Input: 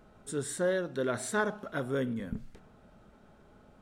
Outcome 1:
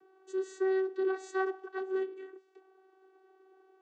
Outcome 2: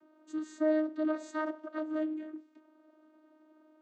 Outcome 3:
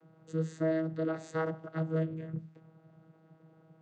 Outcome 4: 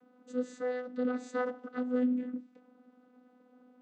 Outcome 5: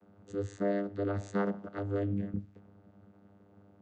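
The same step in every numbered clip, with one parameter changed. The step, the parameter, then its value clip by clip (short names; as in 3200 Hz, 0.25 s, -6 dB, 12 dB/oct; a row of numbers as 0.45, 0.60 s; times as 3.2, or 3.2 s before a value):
vocoder, frequency: 380, 310, 160, 250, 100 Hz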